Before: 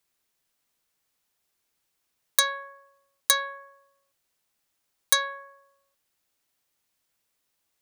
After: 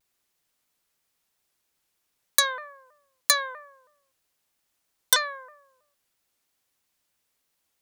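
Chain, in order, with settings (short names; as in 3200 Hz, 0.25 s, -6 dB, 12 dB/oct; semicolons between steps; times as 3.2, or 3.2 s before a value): shaped vibrato saw down 3.1 Hz, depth 160 cents; gain +1 dB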